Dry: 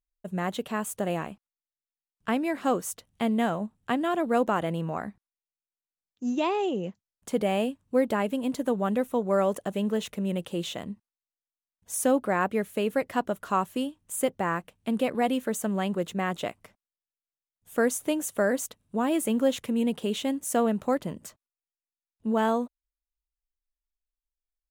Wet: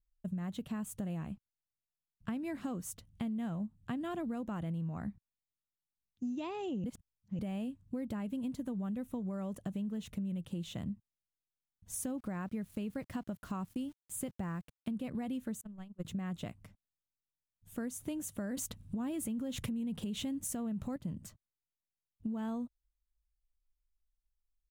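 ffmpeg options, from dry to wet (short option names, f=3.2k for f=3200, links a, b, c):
-filter_complex "[0:a]asettb=1/sr,asplit=3[a][b][c];[a]atrim=end=11.954[d];[b]atrim=start=11.95:end=14.9,asetpts=PTS-STARTPTS,afade=t=in:d=0.004:c=qsin,afade=t=out:st=2.946:d=0.004:c=qsin,aeval=exprs='val(0)*gte(abs(val(0)),0.00447)':c=same[e];[c]atrim=start=14.896[f];[d][e]acrossfade=d=0.004:c1=hsin:c2=qsin[g];[g][f]acrossfade=d=0.004:c1=qsin:c2=hsin,asettb=1/sr,asplit=3[h][i][j];[h]atrim=end=15.614[k];[i]atrim=start=15.61:end=16.05,asetpts=PTS-STARTPTS,afade=t=in:d=0.004:c=qsin,afade=t=out:st=0.436:d=0.004:c=qsin,agate=range=-38dB:threshold=-25dB:ratio=16:release=100:detection=peak[l];[j]atrim=start=16.046[m];[k][l]acrossfade=d=0.004:c1=hsin:c2=qsin[n];[n][m]acrossfade=d=0.004:c1=qsin:c2=hsin,asplit=5[o][p][q][r][s];[o]atrim=end=6.842[t];[p]atrim=start=6.838:end=7.392,asetpts=PTS-STARTPTS,areverse[u];[q]atrim=start=7.388:end=18.572[v];[r]atrim=start=18.568:end=20.962,asetpts=PTS-STARTPTS,volume=11.5dB[w];[s]atrim=start=20.958[x];[t][u]acrossfade=d=0.004:c1=hsin:c2=hsin[y];[y][v]acrossfade=d=0.004:c1=hsin:c2=hsin[z];[z][w]acrossfade=d=0.004:c1=hsin:c2=hsin[aa];[aa][x]acrossfade=d=0.004:c1=hsin:c2=hsin,firequalizer=gain_entry='entry(110,0);entry(410,-20);entry(4100,-17)':delay=0.05:min_phase=1,alimiter=level_in=9.5dB:limit=-24dB:level=0:latency=1:release=142,volume=-9.5dB,acompressor=threshold=-44dB:ratio=6,volume=9dB"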